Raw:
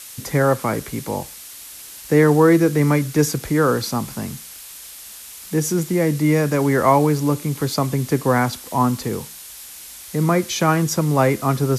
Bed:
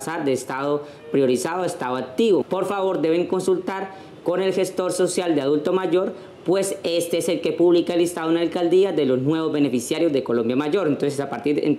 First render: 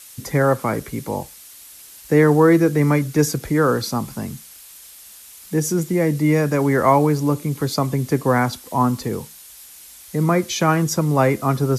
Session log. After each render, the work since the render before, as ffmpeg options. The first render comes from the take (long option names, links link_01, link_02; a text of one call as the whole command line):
ffmpeg -i in.wav -af "afftdn=noise_reduction=6:noise_floor=-38" out.wav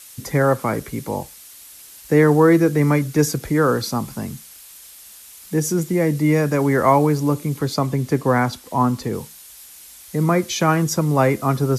ffmpeg -i in.wav -filter_complex "[0:a]asettb=1/sr,asplit=3[link_01][link_02][link_03];[link_01]atrim=end=7.594[link_04];[link_02]atrim=start=7.59:end=9.15,asetpts=PTS-STARTPTS,afade=type=in:duration=0.004:curve=qsin,afade=type=out:start_time=1.556:duration=0.004:curve=qsin,highshelf=frequency=7600:gain=-5.5[link_05];[link_03]atrim=start=9.146[link_06];[link_04][link_05]acrossfade=duration=0.004:curve1=hsin:curve2=qsin[link_07];[link_07][link_06]acrossfade=duration=0.004:curve1=qsin:curve2=hsin" out.wav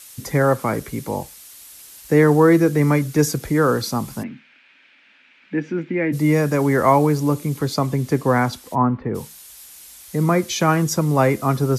ffmpeg -i in.wav -filter_complex "[0:a]asplit=3[link_01][link_02][link_03];[link_01]afade=type=out:start_time=4.22:duration=0.02[link_04];[link_02]highpass=260,equalizer=frequency=260:width_type=q:width=4:gain=9,equalizer=frequency=440:width_type=q:width=4:gain=-8,equalizer=frequency=730:width_type=q:width=4:gain=-7,equalizer=frequency=1100:width_type=q:width=4:gain=-8,equalizer=frequency=1600:width_type=q:width=4:gain=5,equalizer=frequency=2400:width_type=q:width=4:gain=8,lowpass=frequency=2800:width=0.5412,lowpass=frequency=2800:width=1.3066,afade=type=in:start_time=4.22:duration=0.02,afade=type=out:start_time=6.12:duration=0.02[link_05];[link_03]afade=type=in:start_time=6.12:duration=0.02[link_06];[link_04][link_05][link_06]amix=inputs=3:normalize=0,asplit=3[link_07][link_08][link_09];[link_07]afade=type=out:start_time=8.74:duration=0.02[link_10];[link_08]lowpass=frequency=2100:width=0.5412,lowpass=frequency=2100:width=1.3066,afade=type=in:start_time=8.74:duration=0.02,afade=type=out:start_time=9.14:duration=0.02[link_11];[link_09]afade=type=in:start_time=9.14:duration=0.02[link_12];[link_10][link_11][link_12]amix=inputs=3:normalize=0" out.wav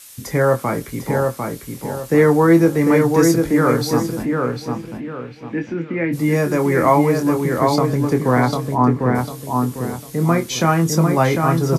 ffmpeg -i in.wav -filter_complex "[0:a]asplit=2[link_01][link_02];[link_02]adelay=24,volume=-7dB[link_03];[link_01][link_03]amix=inputs=2:normalize=0,asplit=2[link_04][link_05];[link_05]adelay=749,lowpass=frequency=2500:poles=1,volume=-3.5dB,asplit=2[link_06][link_07];[link_07]adelay=749,lowpass=frequency=2500:poles=1,volume=0.35,asplit=2[link_08][link_09];[link_09]adelay=749,lowpass=frequency=2500:poles=1,volume=0.35,asplit=2[link_10][link_11];[link_11]adelay=749,lowpass=frequency=2500:poles=1,volume=0.35,asplit=2[link_12][link_13];[link_13]adelay=749,lowpass=frequency=2500:poles=1,volume=0.35[link_14];[link_04][link_06][link_08][link_10][link_12][link_14]amix=inputs=6:normalize=0" out.wav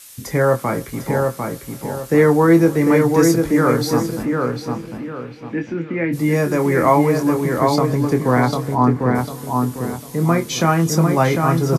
ffmpeg -i in.wav -af "aecho=1:1:291|582|873|1164:0.0708|0.0411|0.0238|0.0138" out.wav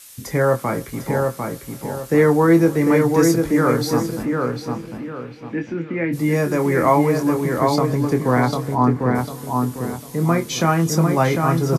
ffmpeg -i in.wav -af "volume=-1.5dB" out.wav